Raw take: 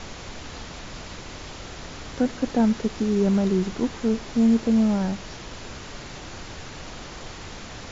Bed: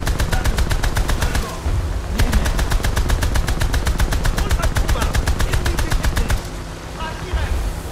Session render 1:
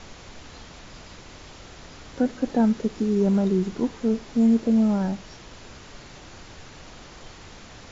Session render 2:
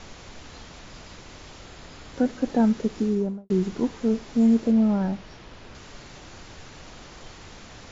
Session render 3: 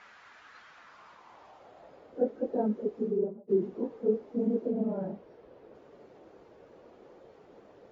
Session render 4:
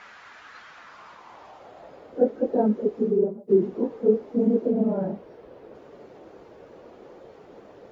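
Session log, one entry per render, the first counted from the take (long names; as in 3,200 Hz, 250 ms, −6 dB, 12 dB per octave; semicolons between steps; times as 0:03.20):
noise reduction from a noise print 6 dB
0:01.64–0:02.14: notch filter 5,800 Hz; 0:03.01–0:03.50: fade out and dull; 0:04.71–0:05.75: high-frequency loss of the air 110 metres
random phases in long frames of 50 ms; band-pass filter sweep 1,500 Hz → 460 Hz, 0:00.70–0:02.22
level +7.5 dB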